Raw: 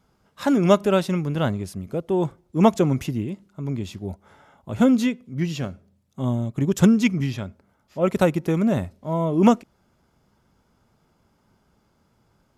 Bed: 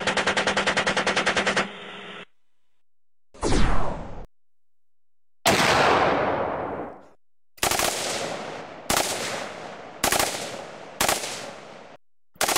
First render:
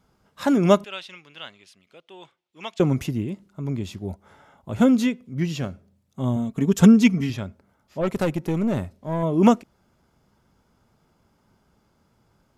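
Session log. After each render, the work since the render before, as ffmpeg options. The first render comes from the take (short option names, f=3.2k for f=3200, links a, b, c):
-filter_complex "[0:a]asettb=1/sr,asplit=3[a][b][c];[a]atrim=end=0.844[d];[b]atrim=start=0.84:end=2.8,asetpts=PTS-STARTPTS,afade=t=in:d=0.004:c=qsin,afade=t=out:st=1.956:d=0.004:c=qsin,bandpass=f=3k:t=q:w=2[e];[c]atrim=start=2.796[f];[d][e]acrossfade=d=0.004:c1=hsin:c2=qsin[g];[g][f]acrossfade=d=0.004:c1=qsin:c2=hsin,asettb=1/sr,asplit=3[h][i][j];[h]atrim=end=6.364[k];[i]atrim=start=6.36:end=7.3,asetpts=PTS-STARTPTS,afade=t=in:d=0.004:c=qsin,afade=t=out:st=0.936:d=0.004:c=qsin,aecho=1:1:4.4:0.6,atrim=end_sample=41454[l];[j]atrim=start=7.296[m];[k][l]acrossfade=d=0.004:c1=hsin:c2=qsin[n];[n][m]acrossfade=d=0.004:c1=qsin:c2=hsin,asettb=1/sr,asplit=3[o][p][q];[o]atrim=end=8.014[r];[p]atrim=start=8.01:end=9.23,asetpts=PTS-STARTPTS,afade=t=in:d=0.004:c=qsin,afade=t=out:st=1.216:d=0.004:c=qsin,aeval=exprs='(tanh(7.08*val(0)+0.35)-tanh(0.35))/7.08':c=same[s];[q]atrim=start=9.226[t];[r][s]acrossfade=d=0.004:c1=hsin:c2=qsin[u];[u][t]acrossfade=d=0.004:c1=qsin:c2=hsin"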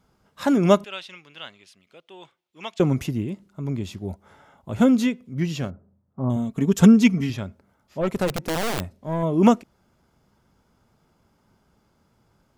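-filter_complex "[0:a]asettb=1/sr,asplit=3[a][b][c];[a]atrim=end=5.704[d];[b]atrim=start=5.7:end=6.3,asetpts=PTS-STARTPTS,afade=t=in:d=0.004:c=qsin,afade=t=out:st=0.596:d=0.004:c=qsin,lowpass=f=1.4k:w=0.5412,lowpass=f=1.4k:w=1.3066[e];[c]atrim=start=6.296[f];[d][e]acrossfade=d=0.004:c1=hsin:c2=qsin[g];[g][f]acrossfade=d=0.004:c1=qsin:c2=hsin,asplit=3[h][i][j];[h]afade=t=out:st=8.27:d=0.02[k];[i]aeval=exprs='(mod(9.44*val(0)+1,2)-1)/9.44':c=same,afade=t=in:st=8.27:d=0.02,afade=t=out:st=8.93:d=0.02[l];[j]afade=t=in:st=8.93:d=0.02[m];[k][l][m]amix=inputs=3:normalize=0"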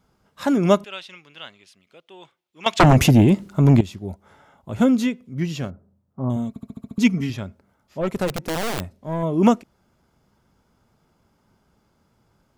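-filter_complex "[0:a]asettb=1/sr,asplit=3[a][b][c];[a]atrim=end=2.664[d];[b]atrim=start=2.66:end=3.81,asetpts=PTS-STARTPTS,afade=t=in:d=0.004:c=qsin,afade=t=out:st=1.146:d=0.004:c=qsin,aeval=exprs='0.422*sin(PI/2*3.98*val(0)/0.422)':c=same[e];[c]atrim=start=3.806[f];[d][e]acrossfade=d=0.004:c1=hsin:c2=qsin[g];[g][f]acrossfade=d=0.004:c1=qsin:c2=hsin,asplit=8[h][i][j][k][l][m][n][o];[h]atrim=end=6.562[p];[i]atrim=start=6.488:end=6.562[q];[j]atrim=start=6.488:end=6.562[r];[k]atrim=start=6.488:end=6.562[s];[l]atrim=start=6.488:end=6.562[t];[m]atrim=start=6.488:end=6.562[u];[n]atrim=start=6.488:end=6.562[v];[o]atrim=start=6.978[w];[p][q]acrossfade=d=0.004:c1=hsin:c2=hsin[x];[x][r]acrossfade=d=0.004:c1=hsin:c2=hsin[y];[y][s]acrossfade=d=0.004:c1=hsin:c2=hsin[z];[z][t]acrossfade=d=0.004:c1=hsin:c2=hsin[aa];[aa][u]acrossfade=d=0.004:c1=hsin:c2=hsin[ab];[ab][v]acrossfade=d=0.004:c1=hsin:c2=hsin[ac];[ac][w]acrossfade=d=0.004:c1=hsin:c2=hsin"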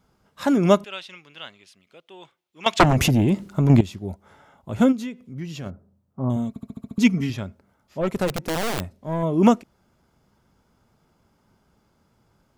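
-filter_complex "[0:a]asettb=1/sr,asplit=3[a][b][c];[a]atrim=end=2.834[d];[b]atrim=start=2.83:end=3.7,asetpts=PTS-STARTPTS,afade=t=in:d=0.004:c=qsin,afade=t=out:st=0.866:d=0.004:c=qsin,acompressor=threshold=-15dB:ratio=6:attack=3.2:release=140:knee=1:detection=peak[e];[c]atrim=start=3.696[f];[d][e]acrossfade=d=0.004:c1=hsin:c2=qsin[g];[g][f]acrossfade=d=0.004:c1=qsin:c2=hsin,asplit=3[h][i][j];[h]afade=t=out:st=4.91:d=0.02[k];[i]acompressor=threshold=-35dB:ratio=2:attack=3.2:release=140:knee=1:detection=peak,afade=t=in:st=4.91:d=0.02,afade=t=out:st=5.65:d=0.02[l];[j]afade=t=in:st=5.65:d=0.02[m];[k][l][m]amix=inputs=3:normalize=0"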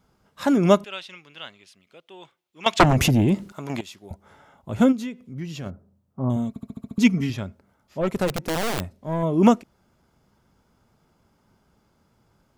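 -filter_complex "[0:a]asettb=1/sr,asplit=3[a][b][c];[a]atrim=end=3.524[d];[b]atrim=start=3.52:end=4.11,asetpts=PTS-STARTPTS,afade=t=in:d=0.004:c=qsin,afade=t=out:st=0.586:d=0.004:c=qsin,highpass=f=1.3k:p=1[e];[c]atrim=start=4.106[f];[d][e]acrossfade=d=0.004:c1=hsin:c2=qsin[g];[g][f]acrossfade=d=0.004:c1=qsin:c2=hsin"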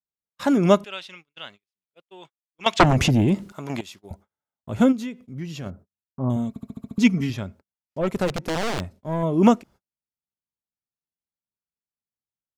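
-filter_complex "[0:a]agate=range=-42dB:threshold=-45dB:ratio=16:detection=peak,acrossover=split=8100[a][b];[b]acompressor=threshold=-47dB:ratio=4:attack=1:release=60[c];[a][c]amix=inputs=2:normalize=0"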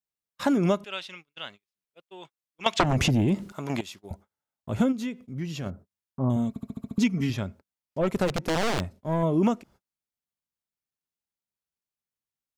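-af "acompressor=threshold=-19dB:ratio=10"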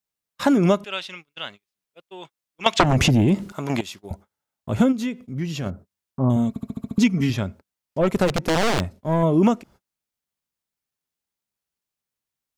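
-af "volume=5.5dB"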